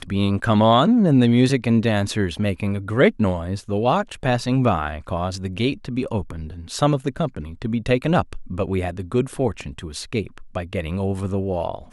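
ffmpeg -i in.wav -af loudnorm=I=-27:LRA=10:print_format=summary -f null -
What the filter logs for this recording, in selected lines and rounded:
Input Integrated:    -22.0 LUFS
Input True Peak:      -2.6 dBTP
Input LRA:             6.8 LU
Input Threshold:     -32.2 LUFS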